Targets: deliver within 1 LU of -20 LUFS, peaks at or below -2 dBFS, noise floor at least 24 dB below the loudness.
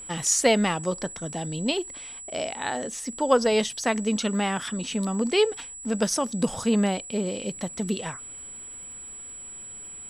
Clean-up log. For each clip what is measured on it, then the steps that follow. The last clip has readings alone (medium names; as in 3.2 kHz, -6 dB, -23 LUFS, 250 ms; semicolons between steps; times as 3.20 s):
tick rate 25 per s; steady tone 7.8 kHz; tone level -38 dBFS; loudness -26.0 LUFS; peak level -6.0 dBFS; loudness target -20.0 LUFS
-> de-click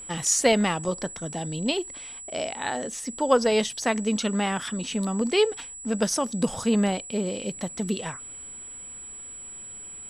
tick rate 0 per s; steady tone 7.8 kHz; tone level -38 dBFS
-> band-stop 7.8 kHz, Q 30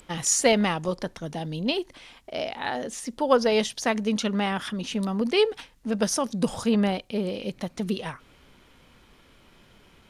steady tone not found; loudness -26.0 LUFS; peak level -6.0 dBFS; loudness target -20.0 LUFS
-> trim +6 dB; peak limiter -2 dBFS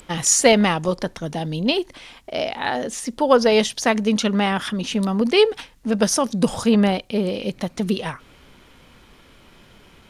loudness -20.5 LUFS; peak level -2.0 dBFS; noise floor -51 dBFS